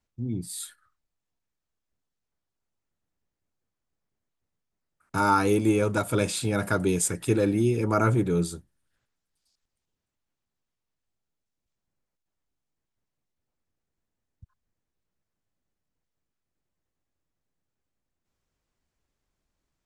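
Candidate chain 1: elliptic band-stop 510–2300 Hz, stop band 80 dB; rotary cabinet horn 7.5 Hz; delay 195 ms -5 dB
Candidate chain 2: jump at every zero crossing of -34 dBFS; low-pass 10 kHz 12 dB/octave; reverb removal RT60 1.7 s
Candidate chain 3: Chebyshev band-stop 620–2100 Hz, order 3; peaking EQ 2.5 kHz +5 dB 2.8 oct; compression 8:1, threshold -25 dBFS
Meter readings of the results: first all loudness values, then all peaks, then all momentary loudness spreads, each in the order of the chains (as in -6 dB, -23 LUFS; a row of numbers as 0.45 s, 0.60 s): -27.0 LUFS, -26.5 LUFS, -30.5 LUFS; -12.5 dBFS, -10.5 dBFS, -15.0 dBFS; 12 LU, 22 LU, 6 LU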